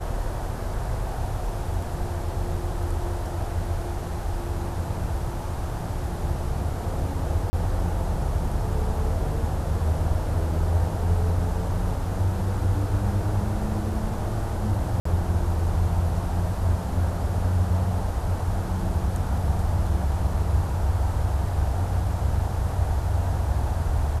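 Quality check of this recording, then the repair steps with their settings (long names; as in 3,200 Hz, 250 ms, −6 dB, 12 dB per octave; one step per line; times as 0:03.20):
0:07.50–0:07.53: drop-out 30 ms
0:15.00–0:15.05: drop-out 54 ms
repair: repair the gap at 0:07.50, 30 ms
repair the gap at 0:15.00, 54 ms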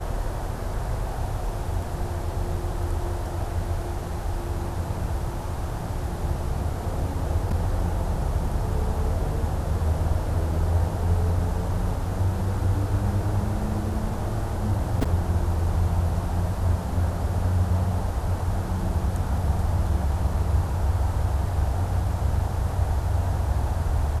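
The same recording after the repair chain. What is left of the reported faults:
none of them is left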